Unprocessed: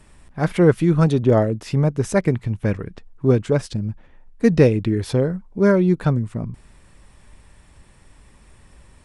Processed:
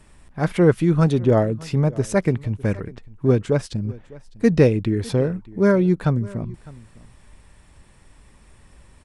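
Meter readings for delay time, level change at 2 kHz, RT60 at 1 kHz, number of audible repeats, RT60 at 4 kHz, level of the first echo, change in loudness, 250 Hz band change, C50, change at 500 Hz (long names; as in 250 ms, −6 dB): 605 ms, −1.0 dB, no reverb audible, 1, no reverb audible, −21.5 dB, −1.0 dB, −1.0 dB, no reverb audible, −1.0 dB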